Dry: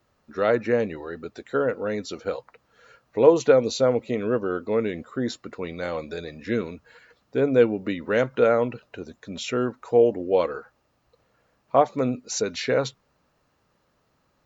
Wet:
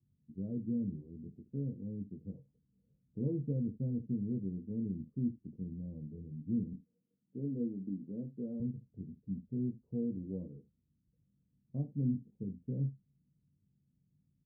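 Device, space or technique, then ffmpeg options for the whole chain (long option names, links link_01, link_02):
the neighbour's flat through the wall: -filter_complex "[0:a]highpass=frequency=150:poles=1,asettb=1/sr,asplit=3[link_01][link_02][link_03];[link_01]atrim=end=6.734[link_04];[link_02]atrim=start=6.73:end=8.6,asetpts=PTS-STARTPTS,afade=type=in:duration=0.004:curve=qsin,afade=type=out:start_time=1.866:duration=0.004:curve=qsin,highpass=230[link_05];[link_03]atrim=start=8.596[link_06];[link_04][link_05]acrossfade=duration=0.004:curve1=hsin:curve2=qsin[link_07];[link_07][link_06]acrossfade=duration=0.004:curve1=qsin:curve2=hsin,lowpass=frequency=200:width=0.5412,lowpass=frequency=200:width=1.3066,equalizer=frequency=150:width_type=o:width=0.77:gain=3.5,aecho=1:1:21|72:0.596|0.158"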